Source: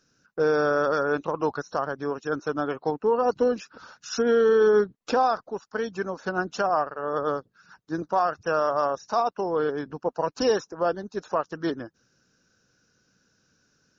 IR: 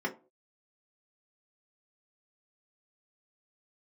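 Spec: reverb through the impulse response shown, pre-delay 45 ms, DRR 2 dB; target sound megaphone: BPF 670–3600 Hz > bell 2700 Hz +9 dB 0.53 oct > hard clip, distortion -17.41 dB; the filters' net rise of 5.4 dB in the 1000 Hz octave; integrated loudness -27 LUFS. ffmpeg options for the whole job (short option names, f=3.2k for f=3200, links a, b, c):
-filter_complex "[0:a]equalizer=f=1k:t=o:g=8.5,asplit=2[a][b];[1:a]atrim=start_sample=2205,adelay=45[c];[b][c]afir=irnorm=-1:irlink=0,volume=-8.5dB[d];[a][d]amix=inputs=2:normalize=0,highpass=670,lowpass=3.6k,equalizer=f=2.7k:t=o:w=0.53:g=9,asoftclip=type=hard:threshold=-12.5dB,volume=-3.5dB"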